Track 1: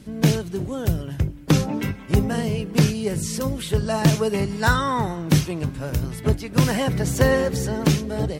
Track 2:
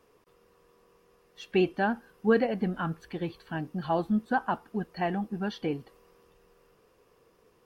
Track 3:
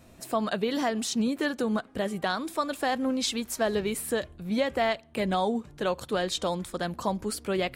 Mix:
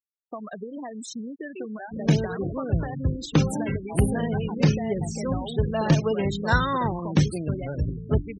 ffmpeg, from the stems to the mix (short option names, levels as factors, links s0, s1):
-filter_complex "[0:a]highshelf=f=10000:g=-3.5,adelay=1850,volume=0.75[s0];[1:a]highpass=460,afwtdn=0.0126,volume=0.316[s1];[2:a]acompressor=threshold=0.0398:ratio=16,adynamicequalizer=threshold=0.00316:dfrequency=5700:dqfactor=0.7:tfrequency=5700:tqfactor=0.7:attack=5:release=100:ratio=0.375:range=2.5:mode=boostabove:tftype=highshelf,volume=0.708[s2];[s0][s1][s2]amix=inputs=3:normalize=0,afftfilt=real='re*gte(hypot(re,im),0.0398)':imag='im*gte(hypot(re,im),0.0398)':win_size=1024:overlap=0.75"